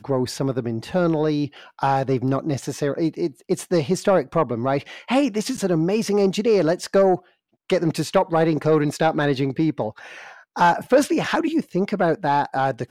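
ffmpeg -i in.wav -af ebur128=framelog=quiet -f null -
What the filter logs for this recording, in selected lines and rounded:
Integrated loudness:
  I:         -21.5 LUFS
  Threshold: -31.7 LUFS
Loudness range:
  LRA:         2.6 LU
  Threshold: -41.6 LUFS
  LRA low:   -23.1 LUFS
  LRA high:  -20.5 LUFS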